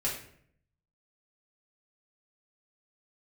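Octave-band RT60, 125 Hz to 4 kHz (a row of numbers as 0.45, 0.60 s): 1.0, 0.80, 0.65, 0.55, 0.60, 0.45 s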